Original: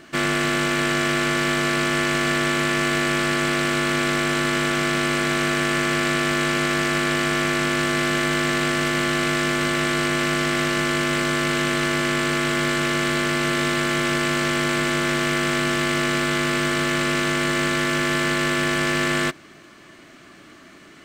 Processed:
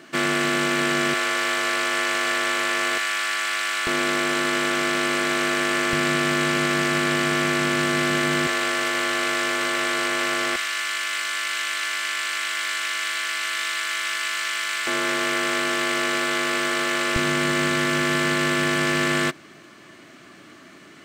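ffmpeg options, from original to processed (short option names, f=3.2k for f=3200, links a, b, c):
-af "asetnsamples=n=441:p=0,asendcmd='1.14 highpass f 510;2.98 highpass f 1100;3.87 highpass f 280;5.93 highpass f 110;8.47 highpass f 430;10.56 highpass f 1500;14.87 highpass f 370;17.16 highpass f 96',highpass=180"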